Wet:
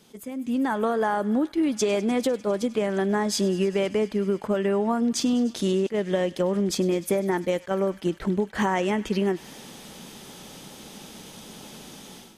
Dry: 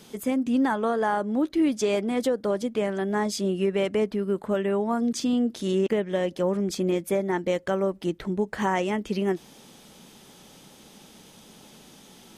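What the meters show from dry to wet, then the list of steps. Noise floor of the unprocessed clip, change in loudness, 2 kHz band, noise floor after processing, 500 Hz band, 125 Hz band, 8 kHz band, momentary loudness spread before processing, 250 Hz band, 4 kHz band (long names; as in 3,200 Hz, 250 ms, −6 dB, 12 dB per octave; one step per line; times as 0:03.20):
−52 dBFS, +1.0 dB, +1.0 dB, −47 dBFS, +1.0 dB, +2.0 dB, +4.5 dB, 4 LU, +1.0 dB, +3.0 dB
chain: downward compressor, threshold −27 dBFS, peak gain reduction 8.5 dB
on a send: delay with a high-pass on its return 100 ms, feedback 84%, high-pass 1,500 Hz, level −19 dB
on the sum: automatic gain control gain up to 14 dB
level that may rise only so fast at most 500 dB per second
level −7 dB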